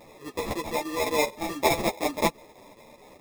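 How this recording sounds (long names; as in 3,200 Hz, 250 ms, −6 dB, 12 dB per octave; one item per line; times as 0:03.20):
aliases and images of a low sample rate 1,500 Hz, jitter 0%
chopped level 4.7 Hz, depth 60%, duty 85%
a shimmering, thickened sound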